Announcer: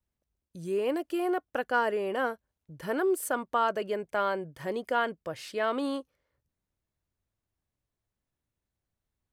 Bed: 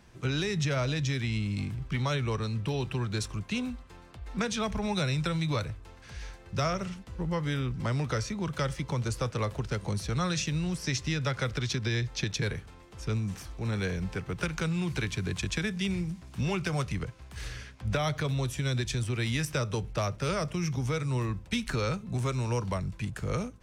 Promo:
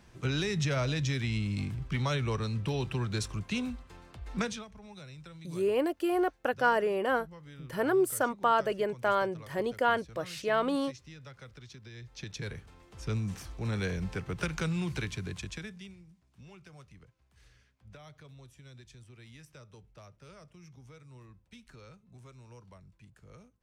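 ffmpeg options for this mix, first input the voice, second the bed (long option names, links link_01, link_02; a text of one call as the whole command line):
ffmpeg -i stem1.wav -i stem2.wav -filter_complex "[0:a]adelay=4900,volume=1dB[link_01];[1:a]volume=16.5dB,afade=type=out:start_time=4.41:duration=0.24:silence=0.125893,afade=type=in:start_time=11.94:duration=1.27:silence=0.133352,afade=type=out:start_time=14.74:duration=1.22:silence=0.0891251[link_02];[link_01][link_02]amix=inputs=2:normalize=0" out.wav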